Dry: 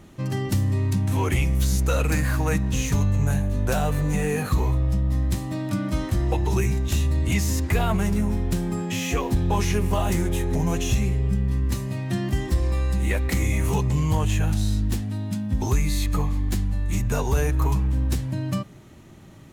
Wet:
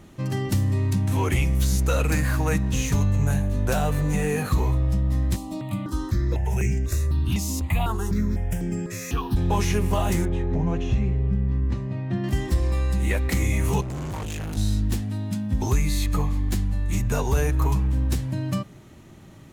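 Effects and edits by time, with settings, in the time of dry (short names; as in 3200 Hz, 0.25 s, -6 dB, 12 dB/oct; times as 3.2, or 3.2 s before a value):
5.36–9.37 step phaser 4 Hz 450–3900 Hz
10.25–12.24 tape spacing loss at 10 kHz 29 dB
13.81–14.57 overloaded stage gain 29 dB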